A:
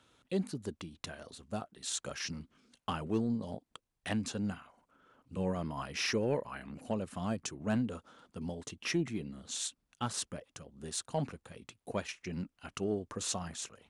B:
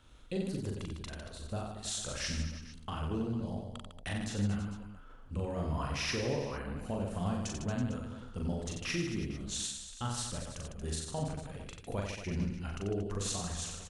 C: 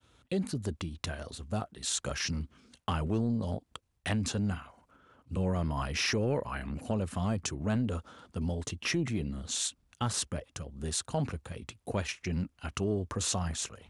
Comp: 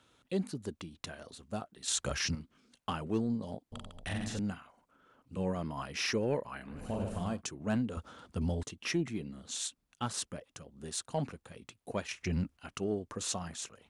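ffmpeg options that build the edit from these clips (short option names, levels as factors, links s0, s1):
-filter_complex "[2:a]asplit=3[s0][s1][s2];[1:a]asplit=2[s3][s4];[0:a]asplit=6[s5][s6][s7][s8][s9][s10];[s5]atrim=end=1.882[s11];[s0]atrim=start=1.878:end=2.352[s12];[s6]atrim=start=2.348:end=3.722[s13];[s3]atrim=start=3.718:end=4.392[s14];[s7]atrim=start=4.388:end=6.88[s15];[s4]atrim=start=6.64:end=7.42[s16];[s8]atrim=start=7.18:end=7.972[s17];[s1]atrim=start=7.968:end=8.632[s18];[s9]atrim=start=8.628:end=12.112[s19];[s2]atrim=start=12.108:end=12.572[s20];[s10]atrim=start=12.568[s21];[s11][s12]acrossfade=d=0.004:c1=hsin:c2=hsin[s22];[s22][s13]acrossfade=d=0.004:c1=hsin:c2=hsin[s23];[s23][s14]acrossfade=d=0.004:c1=hsin:c2=hsin[s24];[s24][s15]acrossfade=d=0.004:c1=hsin:c2=hsin[s25];[s25][s16]acrossfade=d=0.24:c1=tri:c2=tri[s26];[s26][s17]acrossfade=d=0.24:c1=tri:c2=tri[s27];[s27][s18]acrossfade=d=0.004:c1=hsin:c2=hsin[s28];[s28][s19]acrossfade=d=0.004:c1=hsin:c2=hsin[s29];[s29][s20]acrossfade=d=0.004:c1=hsin:c2=hsin[s30];[s30][s21]acrossfade=d=0.004:c1=hsin:c2=hsin"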